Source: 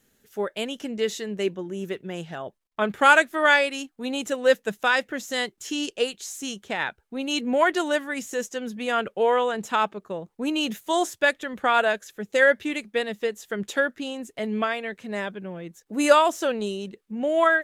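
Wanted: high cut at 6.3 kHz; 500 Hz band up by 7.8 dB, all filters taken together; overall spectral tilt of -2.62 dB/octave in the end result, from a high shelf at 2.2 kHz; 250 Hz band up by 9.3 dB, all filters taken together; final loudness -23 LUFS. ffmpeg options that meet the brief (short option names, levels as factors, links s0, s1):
-af "lowpass=6300,equalizer=f=250:t=o:g=9,equalizer=f=500:t=o:g=7,highshelf=f=2200:g=4,volume=0.631"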